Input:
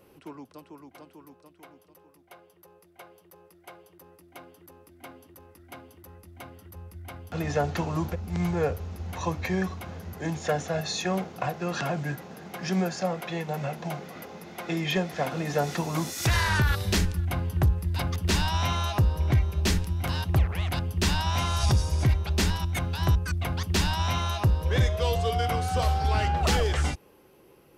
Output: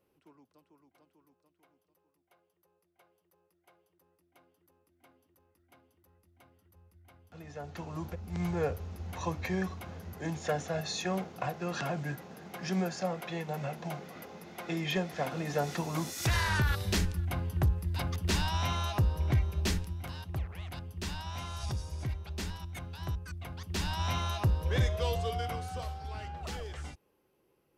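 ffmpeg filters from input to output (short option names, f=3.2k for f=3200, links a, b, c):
-af "volume=3dB,afade=t=in:st=7.56:d=0.99:silence=0.223872,afade=t=out:st=19.58:d=0.55:silence=0.398107,afade=t=in:st=23.61:d=0.48:silence=0.398107,afade=t=out:st=24.99:d=0.97:silence=0.281838"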